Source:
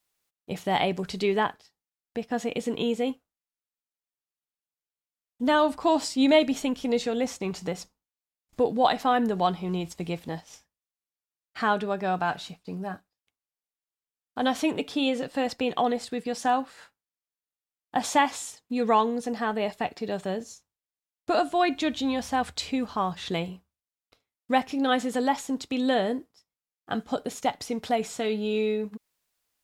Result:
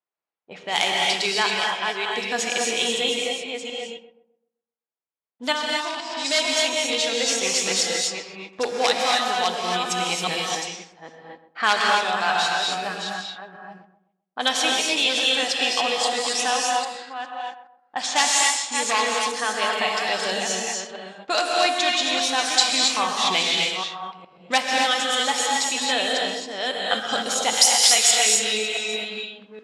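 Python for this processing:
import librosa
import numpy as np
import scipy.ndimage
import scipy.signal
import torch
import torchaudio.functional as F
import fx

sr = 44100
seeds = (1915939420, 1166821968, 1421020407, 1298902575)

p1 = fx.reverse_delay(x, sr, ms=411, wet_db=-7.5)
p2 = 10.0 ** (-14.0 / 20.0) * (np.abs((p1 / 10.0 ** (-14.0 / 20.0) + 3.0) % 4.0 - 2.0) - 1.0)
p3 = fx.tilt_eq(p2, sr, slope=4.0, at=(27.53, 28.11))
p4 = fx.rider(p3, sr, range_db=4, speed_s=0.5)
p5 = p4 + fx.echo_filtered(p4, sr, ms=129, feedback_pct=36, hz=3700.0, wet_db=-12, dry=0)
p6 = fx.level_steps(p5, sr, step_db=10, at=(5.51, 6.24), fade=0.02)
p7 = fx.rev_gated(p6, sr, seeds[0], gate_ms=300, shape='rising', drr_db=-1.0)
p8 = fx.env_lowpass(p7, sr, base_hz=700.0, full_db=-21.5)
p9 = fx.weighting(p8, sr, curve='ITU-R 468')
y = p9 * librosa.db_to_amplitude(1.5)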